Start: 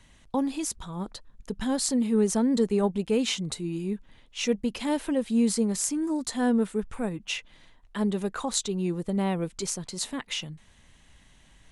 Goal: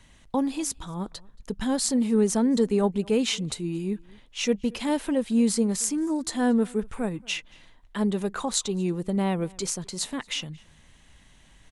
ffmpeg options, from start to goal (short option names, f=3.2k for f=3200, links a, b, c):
-filter_complex "[0:a]asplit=2[a][b];[b]adelay=227.4,volume=-25dB,highshelf=f=4k:g=-5.12[c];[a][c]amix=inputs=2:normalize=0,volume=1.5dB"